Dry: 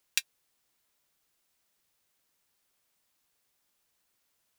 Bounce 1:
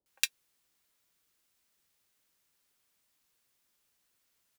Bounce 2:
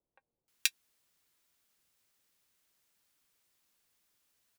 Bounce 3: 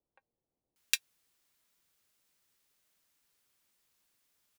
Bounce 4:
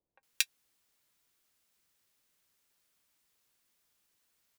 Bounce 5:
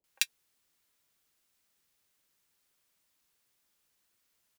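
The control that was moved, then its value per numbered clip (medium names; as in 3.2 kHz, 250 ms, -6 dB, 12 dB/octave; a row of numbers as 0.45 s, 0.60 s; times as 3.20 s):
bands offset in time, time: 60 ms, 480 ms, 760 ms, 230 ms, 40 ms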